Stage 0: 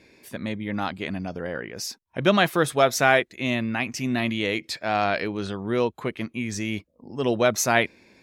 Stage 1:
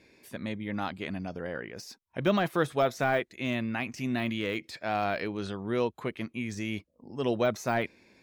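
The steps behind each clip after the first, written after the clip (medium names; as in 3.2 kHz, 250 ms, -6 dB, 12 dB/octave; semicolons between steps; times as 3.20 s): de-esser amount 80%; trim -5 dB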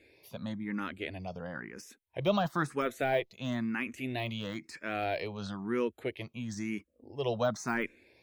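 barber-pole phaser +1 Hz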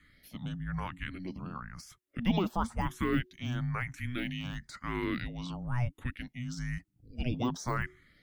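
frequency shift -370 Hz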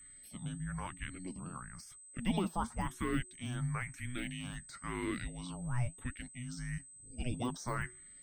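flange 0.95 Hz, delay 0.7 ms, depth 7 ms, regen +72%; whistle 8.2 kHz -53 dBFS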